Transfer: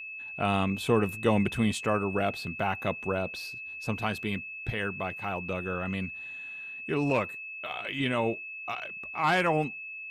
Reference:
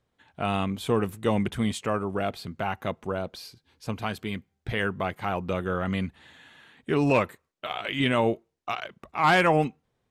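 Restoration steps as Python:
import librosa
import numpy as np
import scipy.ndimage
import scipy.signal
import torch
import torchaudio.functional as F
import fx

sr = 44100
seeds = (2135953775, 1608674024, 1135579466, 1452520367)

y = fx.notch(x, sr, hz=2600.0, q=30.0)
y = fx.gain(y, sr, db=fx.steps((0.0, 0.0), (4.7, 5.0)))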